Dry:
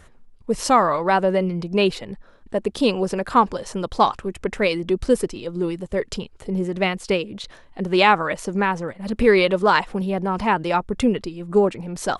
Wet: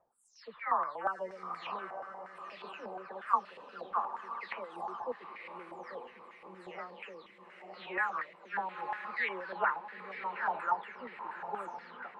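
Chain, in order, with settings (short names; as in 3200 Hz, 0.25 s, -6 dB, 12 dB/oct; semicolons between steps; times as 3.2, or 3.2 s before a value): spectral delay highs early, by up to 0.403 s; diffused feedback echo 0.939 s, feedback 46%, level -8.5 dB; stepped band-pass 8.4 Hz 770–2000 Hz; gain -6 dB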